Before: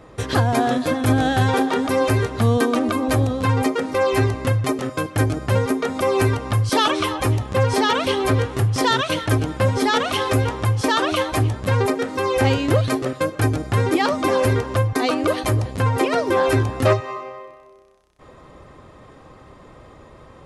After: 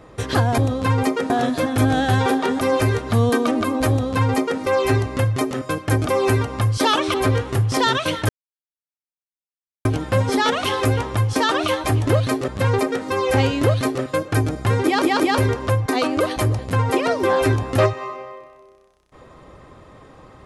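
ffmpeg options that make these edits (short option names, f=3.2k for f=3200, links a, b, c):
-filter_complex "[0:a]asplit=11[a][b][c][d][e][f][g][h][i][j][k];[a]atrim=end=0.582[l];[b]atrim=start=3.168:end=3.892[m];[c]atrim=start=0.578:end=5.352[n];[d]atrim=start=5.988:end=7.062[o];[e]atrim=start=8.178:end=9.33,asetpts=PTS-STARTPTS,afade=t=out:st=1.148:d=0.004:c=hsin,apad=pad_dur=1.56[p];[f]atrim=start=9.33:end=11.552,asetpts=PTS-STARTPTS,afade=t=in:d=0.004:c=hsin[q];[g]atrim=start=12.678:end=13.092[r];[h]atrim=start=11.548:end=14.092[s];[i]atrim=start=13.908:end=14.092[t];[j]atrim=start=13.908:end=14.092[u];[k]atrim=start=14.448[v];[l][m]acrossfade=d=0.004:c1=hsin:c2=hsin[w];[w][n]acrossfade=d=0.004:c1=hsin:c2=hsin[x];[x][o]acrossfade=d=0.004:c1=hsin:c2=hsin[y];[p][q]concat=n=2:v=0:a=1[z];[y][z]acrossfade=d=0.004:c1=hsin:c2=hsin[aa];[aa][r]acrossfade=d=0.004:c1=hsin:c2=hsin[ab];[ab][s]acrossfade=d=0.004:c1=hsin:c2=hsin[ac];[ac][t]acrossfade=d=0.004:c1=hsin:c2=hsin[ad];[ad][u]acrossfade=d=0.004:c1=hsin:c2=hsin[ae];[ae][v]acrossfade=d=0.004:c1=hsin:c2=hsin"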